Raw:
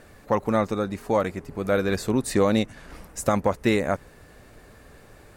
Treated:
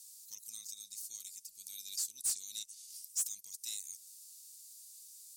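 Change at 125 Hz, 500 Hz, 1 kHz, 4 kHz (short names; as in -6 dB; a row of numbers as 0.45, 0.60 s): under -40 dB, under -40 dB, under -40 dB, -7.5 dB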